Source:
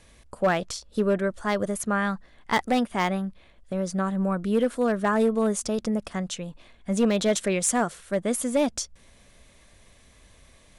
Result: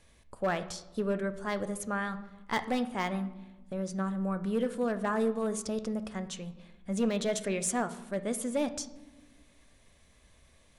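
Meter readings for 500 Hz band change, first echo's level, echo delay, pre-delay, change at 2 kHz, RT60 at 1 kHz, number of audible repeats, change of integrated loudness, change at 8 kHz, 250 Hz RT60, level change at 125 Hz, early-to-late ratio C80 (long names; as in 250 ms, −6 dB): −7.0 dB, no echo audible, no echo audible, 13 ms, −7.0 dB, 1.0 s, no echo audible, −7.0 dB, −7.5 dB, 1.7 s, −6.5 dB, 16.0 dB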